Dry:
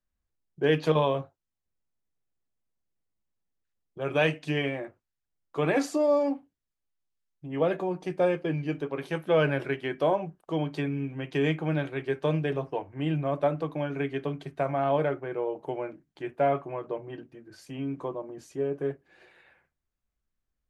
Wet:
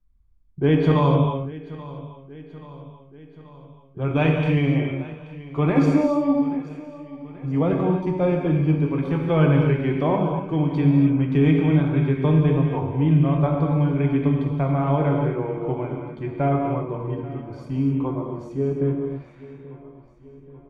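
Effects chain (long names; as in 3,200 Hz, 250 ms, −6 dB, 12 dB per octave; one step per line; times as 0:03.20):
RIAA equalisation playback
comb filter 0.9 ms, depth 41%
repeating echo 832 ms, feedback 58%, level −18 dB
reverb whose tail is shaped and stops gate 310 ms flat, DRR 1 dB
level +1 dB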